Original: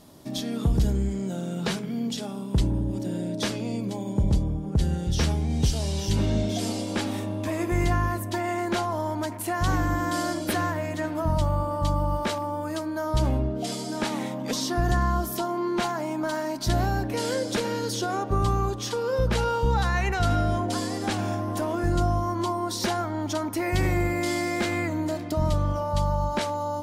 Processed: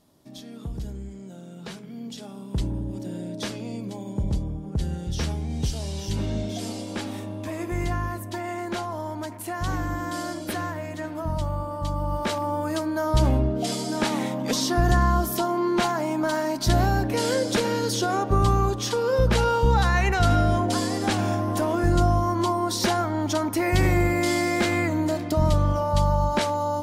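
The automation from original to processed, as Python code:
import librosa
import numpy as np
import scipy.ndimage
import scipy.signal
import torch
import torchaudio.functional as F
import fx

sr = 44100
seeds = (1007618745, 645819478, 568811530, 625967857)

y = fx.gain(x, sr, db=fx.line((1.59, -11.0), (2.64, -3.5), (11.91, -3.5), (12.5, 3.5)))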